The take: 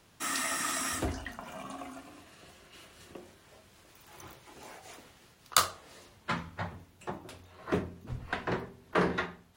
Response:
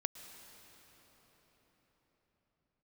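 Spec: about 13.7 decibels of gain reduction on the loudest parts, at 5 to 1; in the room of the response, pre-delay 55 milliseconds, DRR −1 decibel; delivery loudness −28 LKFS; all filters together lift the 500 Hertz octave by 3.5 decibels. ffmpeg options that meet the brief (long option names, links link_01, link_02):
-filter_complex "[0:a]equalizer=frequency=500:width_type=o:gain=4.5,acompressor=threshold=-35dB:ratio=5,asplit=2[link_01][link_02];[1:a]atrim=start_sample=2205,adelay=55[link_03];[link_02][link_03]afir=irnorm=-1:irlink=0,volume=1.5dB[link_04];[link_01][link_04]amix=inputs=2:normalize=0,volume=10.5dB"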